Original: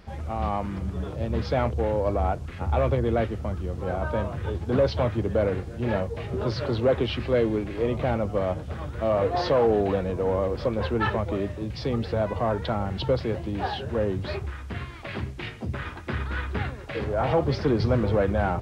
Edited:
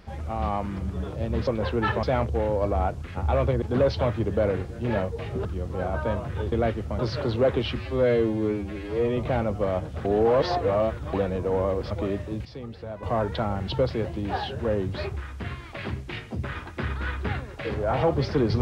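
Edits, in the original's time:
3.06–3.53 s: swap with 4.60–6.43 s
7.21–7.91 s: stretch 2×
8.79–9.87 s: reverse
10.65–11.21 s: move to 1.47 s
11.75–12.33 s: gain -11 dB

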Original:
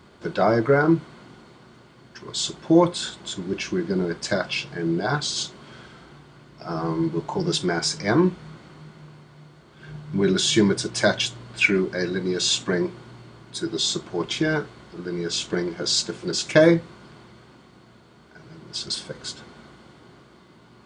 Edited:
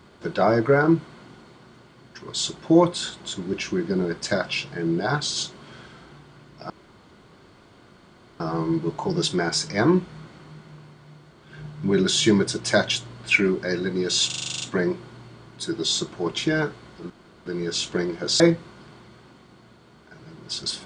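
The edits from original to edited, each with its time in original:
6.70 s: insert room tone 1.70 s
12.56 s: stutter 0.04 s, 10 plays
15.04 s: insert room tone 0.36 s
15.98–16.64 s: delete

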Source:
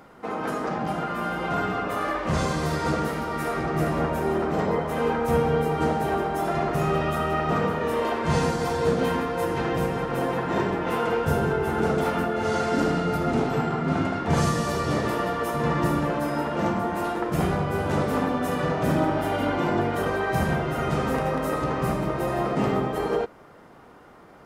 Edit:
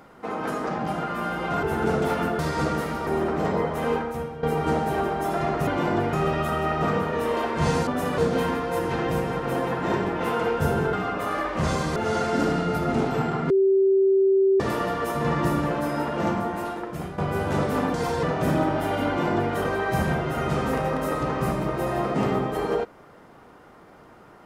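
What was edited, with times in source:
1.63–2.66 s: swap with 11.59–12.35 s
3.34–4.21 s: delete
5.06–5.57 s: fade out quadratic, to -14.5 dB
8.55–8.84 s: swap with 18.33–18.64 s
13.89–14.99 s: bleep 387 Hz -15.5 dBFS
16.74–17.57 s: fade out, to -14 dB
19.48–19.94 s: copy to 6.81 s

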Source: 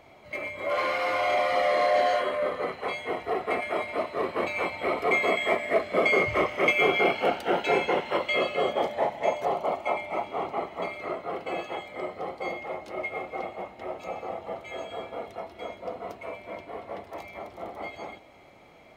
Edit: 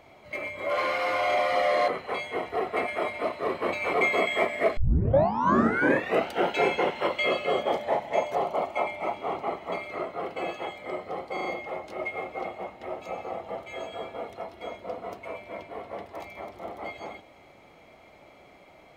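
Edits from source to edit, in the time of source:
1.88–2.62 s: delete
4.67–5.03 s: delete
5.87 s: tape start 1.53 s
12.43 s: stutter 0.04 s, 4 plays

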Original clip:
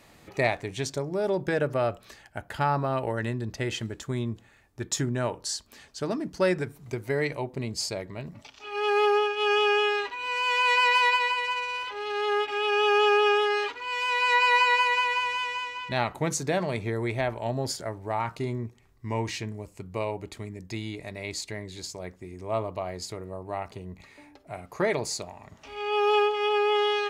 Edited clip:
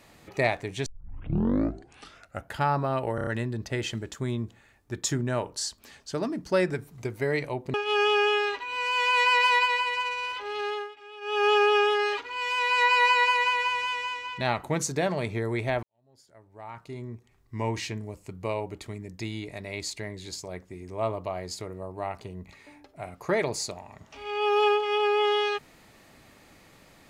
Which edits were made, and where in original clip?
0.86 s: tape start 1.66 s
3.15 s: stutter 0.03 s, 5 plays
7.62–9.25 s: delete
12.13–12.99 s: dip -18 dB, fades 0.27 s
17.34–19.11 s: fade in quadratic

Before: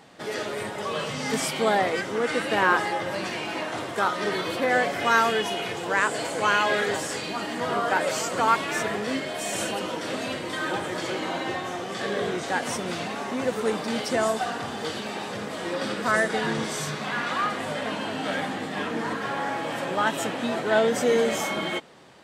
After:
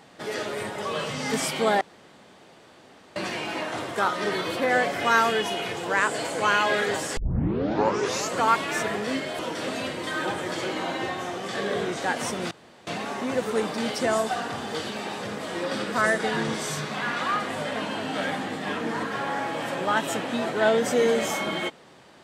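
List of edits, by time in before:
1.81–3.16 s: room tone
7.17 s: tape start 1.17 s
9.39–9.85 s: delete
12.97 s: insert room tone 0.36 s

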